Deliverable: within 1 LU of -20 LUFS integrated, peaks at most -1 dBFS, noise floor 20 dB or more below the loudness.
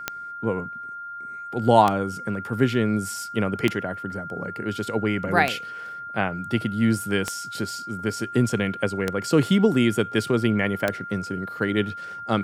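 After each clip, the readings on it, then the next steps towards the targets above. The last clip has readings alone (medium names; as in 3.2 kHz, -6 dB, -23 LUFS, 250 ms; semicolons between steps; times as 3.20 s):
clicks found 7; steady tone 1.4 kHz; tone level -33 dBFS; loudness -24.5 LUFS; peak level -3.5 dBFS; loudness target -20.0 LUFS
-> de-click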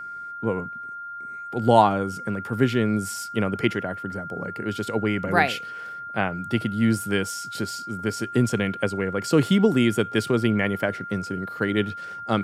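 clicks found 0; steady tone 1.4 kHz; tone level -33 dBFS
-> band-stop 1.4 kHz, Q 30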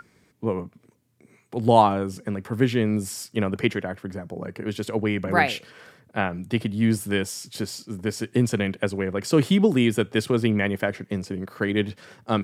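steady tone not found; loudness -24.5 LUFS; peak level -3.5 dBFS; loudness target -20.0 LUFS
-> trim +4.5 dB; peak limiter -1 dBFS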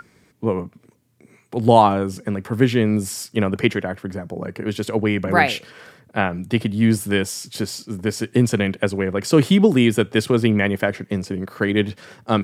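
loudness -20.5 LUFS; peak level -1.0 dBFS; noise floor -58 dBFS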